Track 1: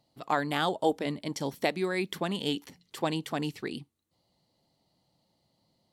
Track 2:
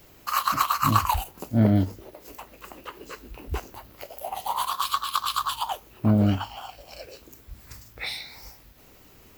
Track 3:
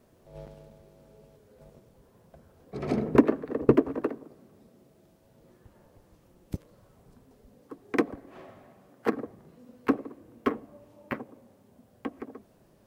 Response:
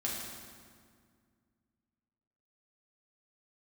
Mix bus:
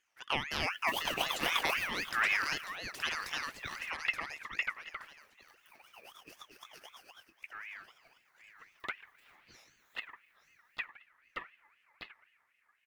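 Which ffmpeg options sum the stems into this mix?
-filter_complex "[0:a]lowshelf=frequency=260:gain=-9,volume=-2dB,asplit=3[link_01][link_02][link_03];[link_02]volume=-5.5dB[link_04];[1:a]adelay=600,volume=-9.5dB,asplit=2[link_05][link_06];[link_06]volume=-15dB[link_07];[2:a]adelay=900,volume=-12.5dB[link_08];[link_03]apad=whole_len=439967[link_09];[link_05][link_09]sidechaingate=range=-33dB:threshold=-55dB:ratio=16:detection=peak[link_10];[link_04][link_07]amix=inputs=2:normalize=0,aecho=0:1:874|1748|2622|3496:1|0.22|0.0484|0.0106[link_11];[link_01][link_10][link_08][link_11]amix=inputs=4:normalize=0,aeval=exprs='val(0)*sin(2*PI*1900*n/s+1900*0.25/3.9*sin(2*PI*3.9*n/s))':channel_layout=same"

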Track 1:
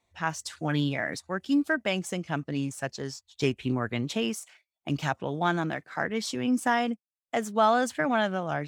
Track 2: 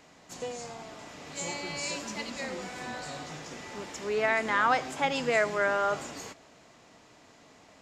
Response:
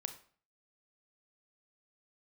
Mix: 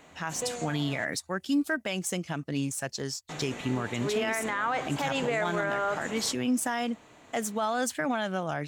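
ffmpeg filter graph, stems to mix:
-filter_complex "[0:a]aemphasis=mode=production:type=cd,alimiter=limit=-15dB:level=0:latency=1:release=353,volume=0.5dB[link_01];[1:a]equalizer=frequency=5100:width_type=o:width=0.29:gain=-15,volume=2.5dB,asplit=3[link_02][link_03][link_04];[link_02]atrim=end=1.05,asetpts=PTS-STARTPTS,afade=type=out:start_time=1.046:duration=0.004:curve=hsin[link_05];[link_03]atrim=start=1.05:end=3.29,asetpts=PTS-STARTPTS,volume=0[link_06];[link_04]atrim=start=3.29,asetpts=PTS-STARTPTS,afade=type=in:duration=0.004:curve=hsin[link_07];[link_05][link_06][link_07]concat=n=3:v=0:a=1[link_08];[link_01][link_08]amix=inputs=2:normalize=0,alimiter=limit=-19.5dB:level=0:latency=1:release=59"

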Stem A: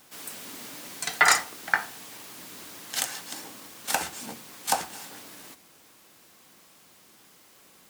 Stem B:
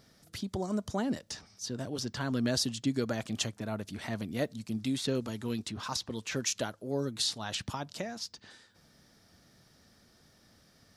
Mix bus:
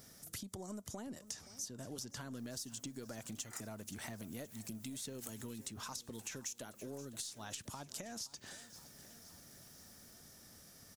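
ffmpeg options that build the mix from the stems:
ffmpeg -i stem1.wav -i stem2.wav -filter_complex "[0:a]adelay=2250,volume=-14.5dB,afade=type=in:start_time=3.88:duration=0.42:silence=0.421697,afade=type=out:start_time=5.31:duration=0.56:silence=0.375837[link_01];[1:a]aeval=exprs='0.168*(cos(1*acos(clip(val(0)/0.168,-1,1)))-cos(1*PI/2))+0.00299*(cos(8*acos(clip(val(0)/0.168,-1,1)))-cos(8*PI/2))':channel_layout=same,acompressor=threshold=-41dB:ratio=5,volume=0.5dB,asplit=3[link_02][link_03][link_04];[link_03]volume=-19dB[link_05];[link_04]apad=whole_len=447208[link_06];[link_01][link_06]sidechaincompress=threshold=-56dB:ratio=8:attack=6.9:release=128[link_07];[link_05]aecho=0:1:522|1044|1566|2088|2610|3132|3654|4176|4698:1|0.57|0.325|0.185|0.106|0.0602|0.0343|0.0195|0.0111[link_08];[link_07][link_02][link_08]amix=inputs=3:normalize=0,aexciter=amount=4:drive=4.6:freq=6000,acompressor=threshold=-44dB:ratio=2.5" out.wav

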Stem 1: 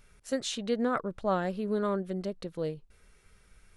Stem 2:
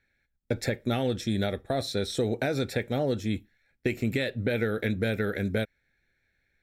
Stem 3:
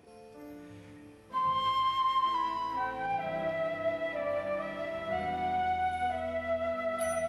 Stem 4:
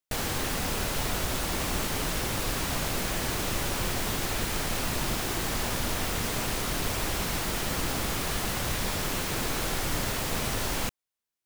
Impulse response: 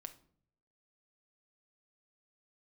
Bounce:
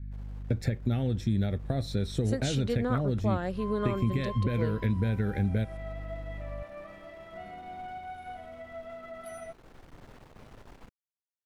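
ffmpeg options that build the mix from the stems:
-filter_complex "[0:a]adelay=2000,volume=2.5dB[link_01];[1:a]aeval=exprs='val(0)+0.00398*(sin(2*PI*50*n/s)+sin(2*PI*2*50*n/s)/2+sin(2*PI*3*50*n/s)/3+sin(2*PI*4*50*n/s)/4+sin(2*PI*5*50*n/s)/5)':channel_layout=same,bass=frequency=250:gain=15,treble=frequency=4000:gain=-3,volume=-4dB[link_02];[2:a]adelay=2250,volume=-10.5dB[link_03];[3:a]lowpass=frequency=1000:poles=1,aeval=exprs='(tanh(28.2*val(0)+0.75)-tanh(0.75))/28.2':channel_layout=same,volume=-14.5dB,afade=type=in:start_time=9.42:duration=0.62:silence=0.446684[link_04];[link_01][link_02][link_03][link_04]amix=inputs=4:normalize=0,acompressor=threshold=-28dB:ratio=2"

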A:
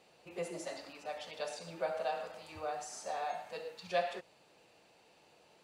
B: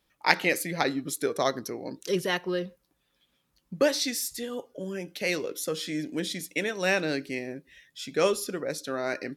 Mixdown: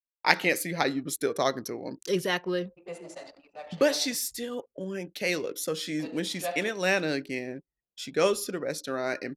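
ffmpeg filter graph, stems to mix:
ffmpeg -i stem1.wav -i stem2.wav -filter_complex "[0:a]agate=range=-8dB:threshold=-58dB:ratio=16:detection=peak,adelay=2500,volume=-0.5dB,asplit=3[link_01][link_02][link_03];[link_01]atrim=end=4.16,asetpts=PTS-STARTPTS,afade=type=out:start_time=4.156:duration=0.004:curve=hsin[link_04];[link_02]atrim=start=4.16:end=5.99,asetpts=PTS-STARTPTS,volume=0[link_05];[link_03]atrim=start=5.99,asetpts=PTS-STARTPTS,afade=type=in:duration=0.004:curve=hsin[link_06];[link_04][link_05][link_06]concat=n=3:v=0:a=1[link_07];[1:a]agate=range=-33dB:threshold=-42dB:ratio=3:detection=peak,volume=0dB[link_08];[link_07][link_08]amix=inputs=2:normalize=0,anlmdn=0.01" out.wav

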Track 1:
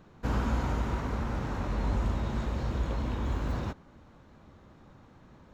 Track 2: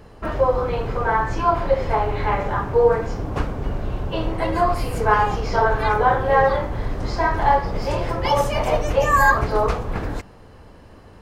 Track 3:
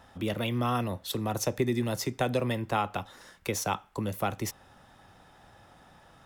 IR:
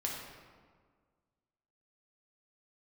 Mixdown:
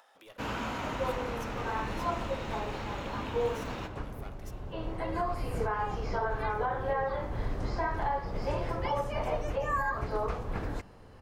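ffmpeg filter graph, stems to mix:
-filter_complex "[0:a]highpass=frequency=340:poles=1,equalizer=frequency=2700:width_type=o:width=0.7:gain=7,aeval=exprs='sgn(val(0))*max(abs(val(0))-0.00112,0)':channel_layout=same,adelay=150,volume=-3.5dB,asplit=2[link_01][link_02];[link_02]volume=-5dB[link_03];[1:a]acrossover=split=2700[link_04][link_05];[link_05]acompressor=threshold=-42dB:ratio=4:attack=1:release=60[link_06];[link_04][link_06]amix=inputs=2:normalize=0,adelay=600,volume=-7.5dB[link_07];[2:a]highpass=frequency=460:width=0.5412,highpass=frequency=460:width=1.3066,aeval=exprs='clip(val(0),-1,0.0168)':channel_layout=same,volume=-18.5dB,asplit=3[link_08][link_09][link_10];[link_09]volume=-12.5dB[link_11];[link_10]apad=whole_len=521240[link_12];[link_07][link_12]sidechaincompress=threshold=-57dB:ratio=5:attack=49:release=1320[link_13];[link_13][link_08]amix=inputs=2:normalize=0,acompressor=mode=upward:threshold=-52dB:ratio=2.5,alimiter=limit=-21.5dB:level=0:latency=1:release=367,volume=0dB[link_14];[3:a]atrim=start_sample=2205[link_15];[link_03][link_11]amix=inputs=2:normalize=0[link_16];[link_16][link_15]afir=irnorm=-1:irlink=0[link_17];[link_01][link_14][link_17]amix=inputs=3:normalize=0"

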